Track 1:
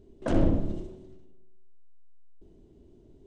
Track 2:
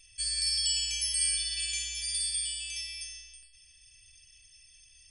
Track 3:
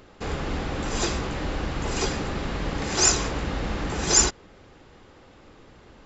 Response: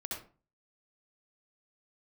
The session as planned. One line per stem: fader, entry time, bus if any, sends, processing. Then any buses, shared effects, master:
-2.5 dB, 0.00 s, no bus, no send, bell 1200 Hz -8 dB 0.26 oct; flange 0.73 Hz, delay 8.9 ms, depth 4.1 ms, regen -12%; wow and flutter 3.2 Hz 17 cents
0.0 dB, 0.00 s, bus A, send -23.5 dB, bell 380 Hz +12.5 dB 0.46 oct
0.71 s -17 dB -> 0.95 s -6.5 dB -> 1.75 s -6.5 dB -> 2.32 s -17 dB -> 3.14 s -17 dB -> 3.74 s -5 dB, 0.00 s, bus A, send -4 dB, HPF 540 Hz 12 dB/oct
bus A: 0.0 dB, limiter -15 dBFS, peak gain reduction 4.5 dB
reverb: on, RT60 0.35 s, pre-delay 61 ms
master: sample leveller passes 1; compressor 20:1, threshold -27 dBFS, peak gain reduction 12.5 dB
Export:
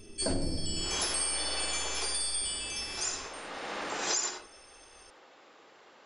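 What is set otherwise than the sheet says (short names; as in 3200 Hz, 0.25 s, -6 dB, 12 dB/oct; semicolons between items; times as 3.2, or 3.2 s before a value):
stem 1 -2.5 dB -> +7.0 dB; master: missing sample leveller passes 1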